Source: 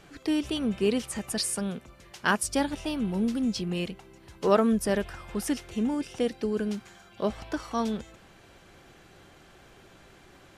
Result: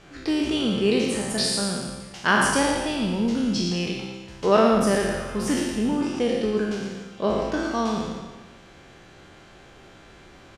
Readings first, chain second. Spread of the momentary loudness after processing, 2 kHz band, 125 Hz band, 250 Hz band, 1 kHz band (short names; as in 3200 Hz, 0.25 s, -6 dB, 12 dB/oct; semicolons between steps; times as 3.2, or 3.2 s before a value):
12 LU, +8.0 dB, +5.5 dB, +4.5 dB, +7.0 dB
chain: spectral trails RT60 1.33 s; LPF 7600 Hz 12 dB/oct; on a send: echo 0.113 s -8 dB; on the sum: gain +2 dB